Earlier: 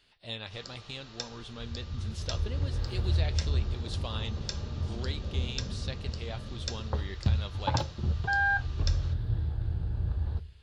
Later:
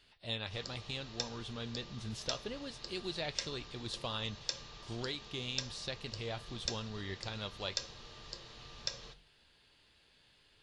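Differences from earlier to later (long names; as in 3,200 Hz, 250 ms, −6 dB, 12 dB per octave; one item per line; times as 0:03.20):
first sound: add parametric band 1,400 Hz −7.5 dB 0.26 octaves
second sound: muted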